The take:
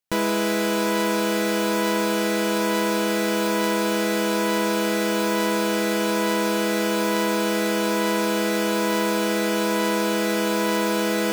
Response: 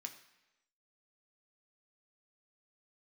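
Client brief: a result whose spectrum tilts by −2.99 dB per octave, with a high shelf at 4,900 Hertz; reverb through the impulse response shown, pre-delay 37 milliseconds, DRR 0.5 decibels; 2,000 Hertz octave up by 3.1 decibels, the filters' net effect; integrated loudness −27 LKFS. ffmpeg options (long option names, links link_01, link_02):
-filter_complex "[0:a]equalizer=frequency=2000:width_type=o:gain=5,highshelf=frequency=4900:gain=-6,asplit=2[link_01][link_02];[1:a]atrim=start_sample=2205,adelay=37[link_03];[link_02][link_03]afir=irnorm=-1:irlink=0,volume=3.5dB[link_04];[link_01][link_04]amix=inputs=2:normalize=0,volume=-8dB"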